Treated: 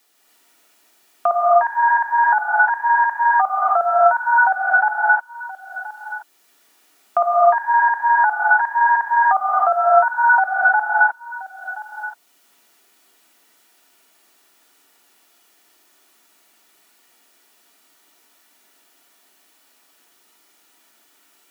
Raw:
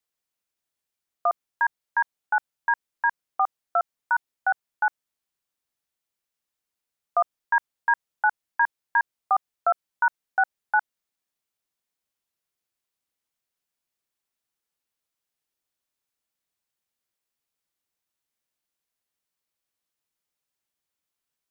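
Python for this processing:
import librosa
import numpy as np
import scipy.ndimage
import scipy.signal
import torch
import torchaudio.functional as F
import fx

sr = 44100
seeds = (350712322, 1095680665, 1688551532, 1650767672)

p1 = scipy.signal.sosfilt(scipy.signal.butter(4, 230.0, 'highpass', fs=sr, output='sos'), x)
p2 = fx.dynamic_eq(p1, sr, hz=640.0, q=1.5, threshold_db=-38.0, ratio=4.0, max_db=4)
p3 = fx.over_compress(p2, sr, threshold_db=-29.0, ratio=-1.0)
p4 = p2 + (p3 * librosa.db_to_amplitude(2.0))
p5 = fx.notch_comb(p4, sr, f0_hz=530.0)
p6 = p5 + fx.echo_single(p5, sr, ms=1026, db=-21.5, dry=0)
p7 = fx.rev_gated(p6, sr, seeds[0], gate_ms=330, shape='rising', drr_db=-6.5)
p8 = fx.band_squash(p7, sr, depth_pct=40)
y = p8 * librosa.db_to_amplitude(-1.0)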